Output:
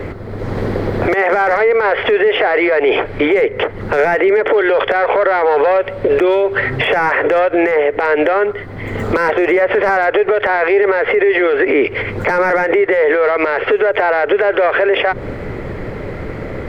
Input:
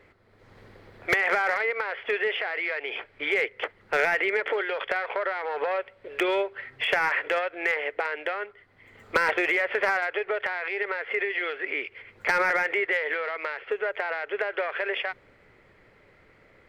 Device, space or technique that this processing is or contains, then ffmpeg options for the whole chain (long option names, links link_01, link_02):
mastering chain: -filter_complex "[0:a]equalizer=frequency=2500:width_type=o:width=0.77:gain=-2,acrossover=split=180|1600[link_01][link_02][link_03];[link_01]acompressor=threshold=-58dB:ratio=4[link_04];[link_02]acompressor=threshold=-32dB:ratio=4[link_05];[link_03]acompressor=threshold=-40dB:ratio=4[link_06];[link_04][link_05][link_06]amix=inputs=3:normalize=0,acompressor=threshold=-37dB:ratio=2.5,tiltshelf=frequency=830:gain=7,alimiter=level_in=34.5dB:limit=-1dB:release=50:level=0:latency=1,volume=-4.5dB"